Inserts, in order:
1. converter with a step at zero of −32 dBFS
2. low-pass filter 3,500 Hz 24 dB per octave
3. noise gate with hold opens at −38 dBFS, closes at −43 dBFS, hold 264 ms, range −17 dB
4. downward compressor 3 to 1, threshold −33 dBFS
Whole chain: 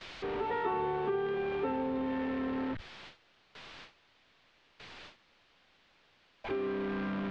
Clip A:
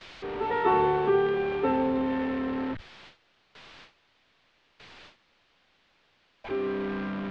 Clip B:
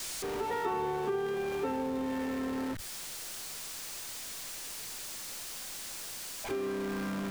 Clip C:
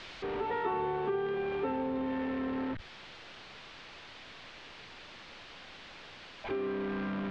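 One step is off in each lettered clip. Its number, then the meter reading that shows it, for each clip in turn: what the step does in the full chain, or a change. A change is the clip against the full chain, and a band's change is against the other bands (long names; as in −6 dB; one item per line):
4, average gain reduction 4.0 dB
2, 4 kHz band +8.0 dB
3, change in momentary loudness spread −3 LU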